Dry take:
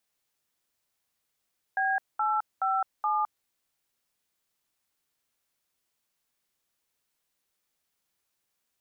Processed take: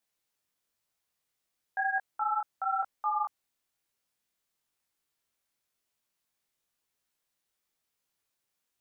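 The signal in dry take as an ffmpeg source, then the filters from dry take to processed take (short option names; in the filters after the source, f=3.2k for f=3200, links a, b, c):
-f lavfi -i "aevalsrc='0.0473*clip(min(mod(t,0.423),0.212-mod(t,0.423))/0.002,0,1)*(eq(floor(t/0.423),0)*(sin(2*PI*770*mod(t,0.423))+sin(2*PI*1633*mod(t,0.423)))+eq(floor(t/0.423),1)*(sin(2*PI*852*mod(t,0.423))+sin(2*PI*1336*mod(t,0.423)))+eq(floor(t/0.423),2)*(sin(2*PI*770*mod(t,0.423))+sin(2*PI*1336*mod(t,0.423)))+eq(floor(t/0.423),3)*(sin(2*PI*852*mod(t,0.423))+sin(2*PI*1209*mod(t,0.423))))':d=1.692:s=44100"
-af "flanger=delay=17:depth=7.3:speed=1"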